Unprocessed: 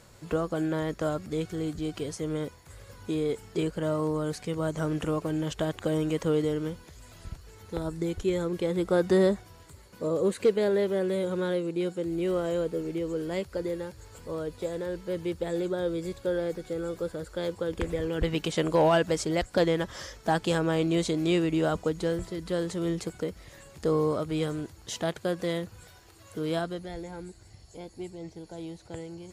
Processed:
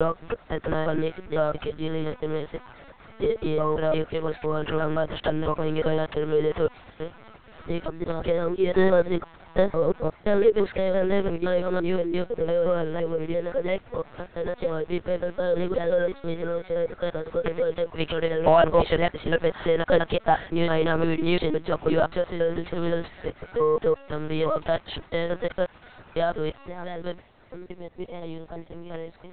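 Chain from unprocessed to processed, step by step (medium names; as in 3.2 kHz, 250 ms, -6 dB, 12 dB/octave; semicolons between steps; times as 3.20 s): slices played last to first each 171 ms, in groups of 3; high-pass 800 Hz 6 dB/octave; in parallel at -6.5 dB: hard clipper -31 dBFS, distortion -8 dB; on the sum: treble shelf 2.5 kHz -10 dB; LPC vocoder at 8 kHz pitch kept; trim +9 dB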